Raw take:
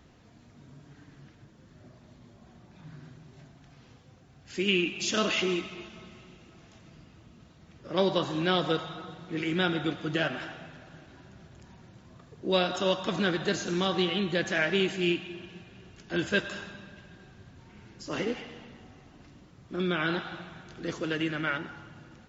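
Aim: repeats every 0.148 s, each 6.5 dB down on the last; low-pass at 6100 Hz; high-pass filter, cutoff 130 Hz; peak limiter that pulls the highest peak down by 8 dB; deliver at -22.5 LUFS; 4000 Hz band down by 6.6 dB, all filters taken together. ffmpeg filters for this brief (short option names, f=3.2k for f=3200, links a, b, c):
-af "highpass=130,lowpass=6.1k,equalizer=f=4k:t=o:g=-9,alimiter=limit=-21.5dB:level=0:latency=1,aecho=1:1:148|296|444|592|740|888:0.473|0.222|0.105|0.0491|0.0231|0.0109,volume=10dB"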